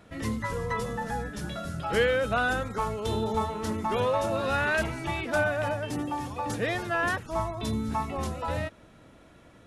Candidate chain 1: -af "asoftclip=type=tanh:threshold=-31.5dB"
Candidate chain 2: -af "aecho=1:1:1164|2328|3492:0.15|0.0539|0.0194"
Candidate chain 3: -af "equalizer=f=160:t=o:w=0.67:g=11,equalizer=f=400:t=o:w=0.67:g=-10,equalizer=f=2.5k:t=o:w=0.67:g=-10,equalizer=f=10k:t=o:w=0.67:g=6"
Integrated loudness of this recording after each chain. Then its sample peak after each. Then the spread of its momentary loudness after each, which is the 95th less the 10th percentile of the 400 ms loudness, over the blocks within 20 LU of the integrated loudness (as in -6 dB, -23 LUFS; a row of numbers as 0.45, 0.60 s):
-35.0, -29.0, -30.0 LUFS; -31.5, -13.5, -15.5 dBFS; 5, 9, 4 LU